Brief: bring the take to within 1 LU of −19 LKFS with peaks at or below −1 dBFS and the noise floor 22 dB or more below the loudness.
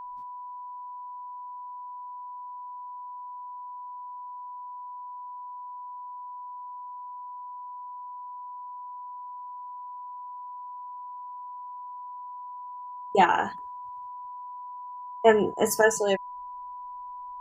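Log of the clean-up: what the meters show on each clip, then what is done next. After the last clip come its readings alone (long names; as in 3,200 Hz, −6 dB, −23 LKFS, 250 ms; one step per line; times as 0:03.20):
interfering tone 990 Hz; level of the tone −37 dBFS; integrated loudness −32.5 LKFS; sample peak −6.5 dBFS; target loudness −19.0 LKFS
→ notch filter 990 Hz, Q 30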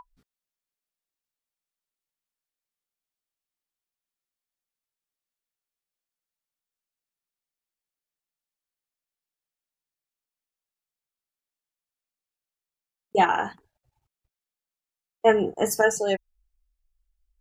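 interfering tone none found; integrated loudness −23.5 LKFS; sample peak −7.0 dBFS; target loudness −19.0 LKFS
→ level +4.5 dB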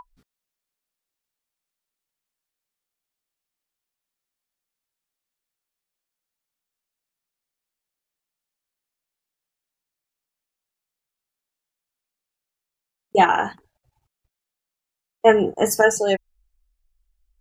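integrated loudness −19.0 LKFS; sample peak −2.5 dBFS; background noise floor −87 dBFS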